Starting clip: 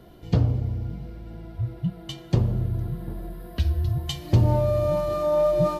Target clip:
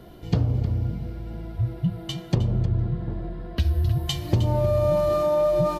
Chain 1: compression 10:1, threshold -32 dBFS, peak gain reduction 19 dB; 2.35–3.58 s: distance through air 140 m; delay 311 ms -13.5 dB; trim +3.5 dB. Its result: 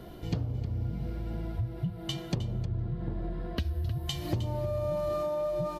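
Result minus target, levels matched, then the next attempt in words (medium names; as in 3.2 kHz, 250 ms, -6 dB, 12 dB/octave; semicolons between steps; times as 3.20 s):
compression: peak gain reduction +10.5 dB
compression 10:1, threshold -20.5 dBFS, peak gain reduction 8.5 dB; 2.35–3.58 s: distance through air 140 m; delay 311 ms -13.5 dB; trim +3.5 dB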